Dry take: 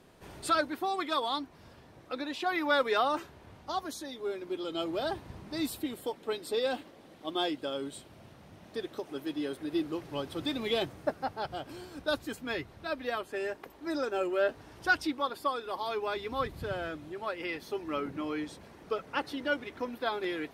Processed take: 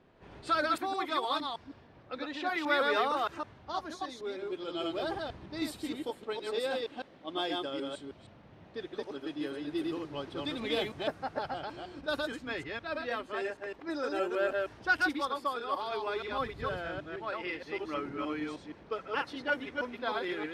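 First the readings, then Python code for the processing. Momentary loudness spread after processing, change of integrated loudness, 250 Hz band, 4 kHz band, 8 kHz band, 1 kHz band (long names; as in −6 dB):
11 LU, −1.0 dB, −1.5 dB, −1.0 dB, −5.5 dB, 0.0 dB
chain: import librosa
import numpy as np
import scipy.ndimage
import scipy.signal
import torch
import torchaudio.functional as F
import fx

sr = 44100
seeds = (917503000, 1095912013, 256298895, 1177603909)

y = fx.reverse_delay(x, sr, ms=156, wet_db=-2.0)
y = fx.env_lowpass(y, sr, base_hz=2900.0, full_db=-24.5)
y = fx.dynamic_eq(y, sr, hz=1700.0, q=0.8, threshold_db=-43.0, ratio=4.0, max_db=3)
y = y * librosa.db_to_amplitude(-4.0)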